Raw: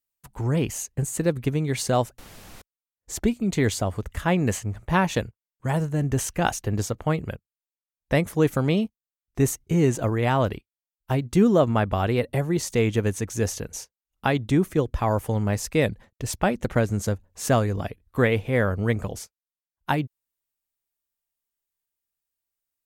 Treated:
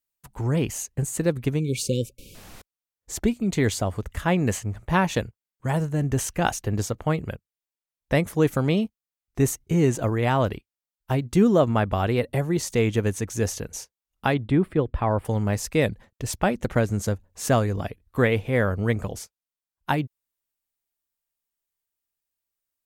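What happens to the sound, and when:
1.60–2.35 s: spectral selection erased 560–2200 Hz
14.34–15.25 s: boxcar filter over 7 samples

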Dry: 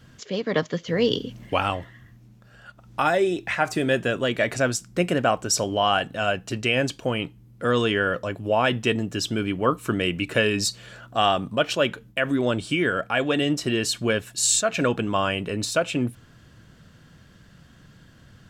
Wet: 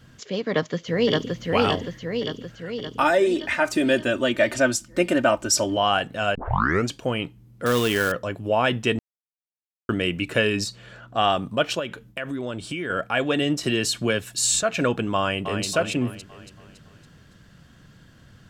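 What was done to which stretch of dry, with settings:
0.50–1.41 s: echo throw 570 ms, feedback 60%, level -1.5 dB
3.00–5.77 s: comb 3.3 ms, depth 75%
6.35 s: tape start 0.56 s
7.66–8.12 s: companded quantiser 4-bit
8.99–9.89 s: mute
10.63–11.28 s: treble shelf 3.7 kHz -> 7.6 kHz -11 dB
11.79–12.90 s: compression 2.5:1, threshold -29 dBFS
13.63–14.63 s: three bands compressed up and down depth 40%
15.17–15.65 s: echo throw 280 ms, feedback 50%, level -7 dB

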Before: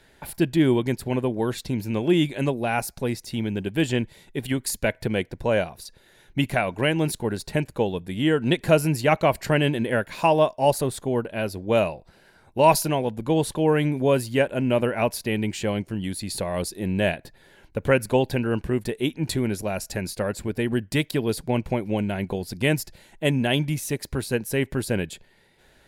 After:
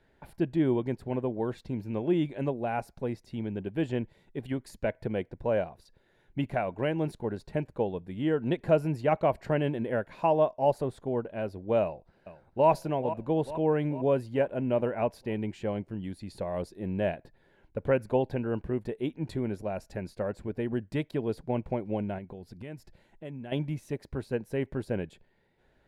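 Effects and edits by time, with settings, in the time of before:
11.82–12.69 s: echo throw 440 ms, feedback 60%, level -11.5 dB
22.18–23.52 s: compression 2.5:1, threshold -34 dBFS
whole clip: dynamic bell 650 Hz, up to +4 dB, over -34 dBFS, Q 0.9; low-pass 1.2 kHz 6 dB/octave; trim -7.5 dB

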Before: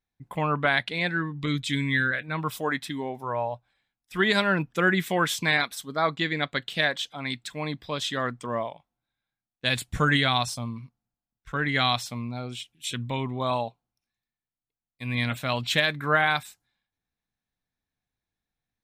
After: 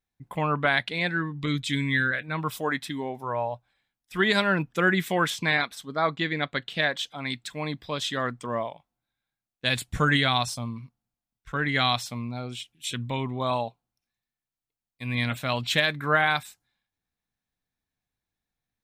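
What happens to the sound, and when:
5.30–6.96 s: treble shelf 6.7 kHz -10 dB

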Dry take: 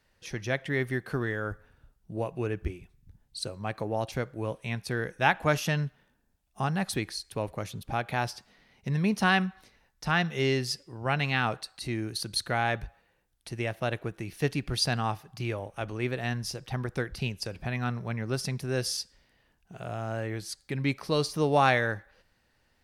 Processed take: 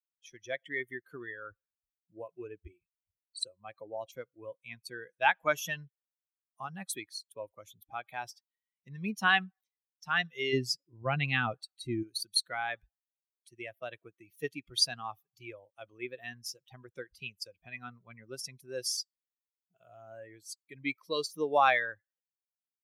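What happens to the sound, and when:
10.53–12.03 s: bass shelf 370 Hz +11 dB
whole clip: expander on every frequency bin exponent 2; high-pass 690 Hz 6 dB/octave; trim +3.5 dB

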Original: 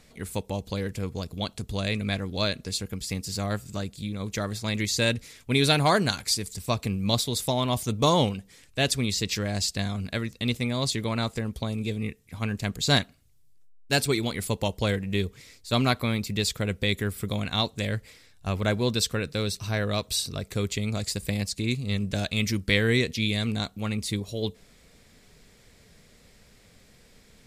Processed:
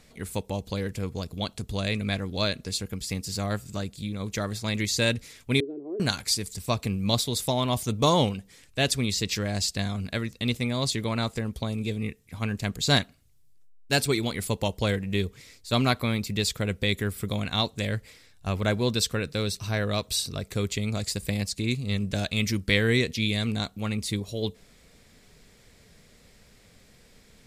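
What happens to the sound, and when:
5.60–6.00 s: Butterworth band-pass 360 Hz, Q 3.6

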